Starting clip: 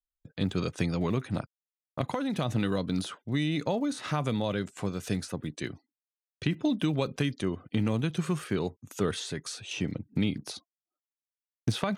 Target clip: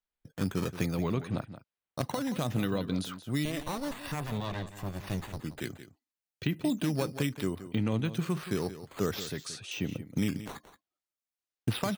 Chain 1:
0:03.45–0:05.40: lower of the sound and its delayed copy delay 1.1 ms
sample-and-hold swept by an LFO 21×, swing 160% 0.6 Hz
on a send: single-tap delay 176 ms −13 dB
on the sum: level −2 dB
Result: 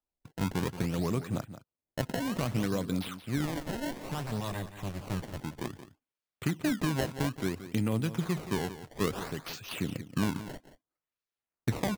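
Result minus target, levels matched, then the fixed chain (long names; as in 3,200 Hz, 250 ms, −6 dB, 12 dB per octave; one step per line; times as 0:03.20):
sample-and-hold swept by an LFO: distortion +8 dB
0:03.45–0:05.40: lower of the sound and its delayed copy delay 1.1 ms
sample-and-hold swept by an LFO 5×, swing 160% 0.6 Hz
on a send: single-tap delay 176 ms −13 dB
on the sum: level −2 dB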